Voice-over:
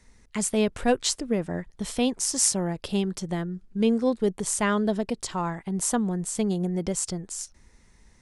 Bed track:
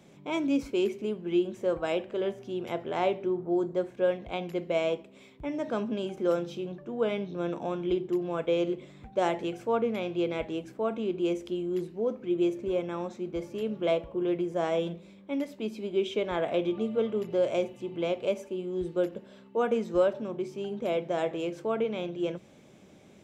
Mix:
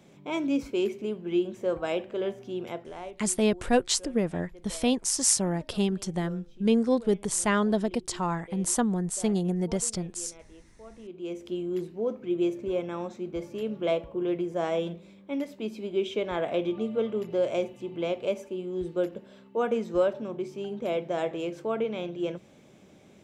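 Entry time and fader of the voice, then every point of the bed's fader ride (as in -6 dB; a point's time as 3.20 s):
2.85 s, -0.5 dB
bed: 2.64 s 0 dB
3.23 s -19 dB
10.85 s -19 dB
11.54 s 0 dB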